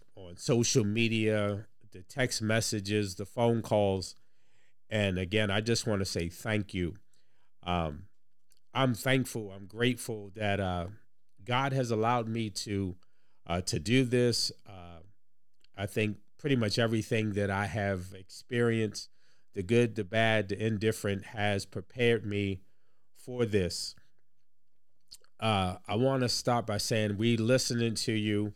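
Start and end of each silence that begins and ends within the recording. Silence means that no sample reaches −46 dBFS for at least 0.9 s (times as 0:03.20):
0:23.98–0:25.11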